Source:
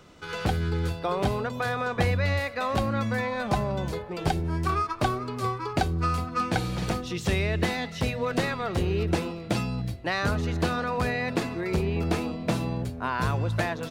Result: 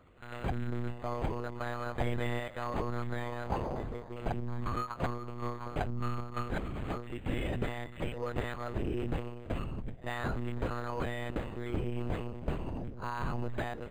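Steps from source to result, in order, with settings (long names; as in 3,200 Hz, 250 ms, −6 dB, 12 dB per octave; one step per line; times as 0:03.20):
one-pitch LPC vocoder at 8 kHz 120 Hz
echo ahead of the sound 49 ms −19.5 dB
linearly interpolated sample-rate reduction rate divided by 8×
level −7.5 dB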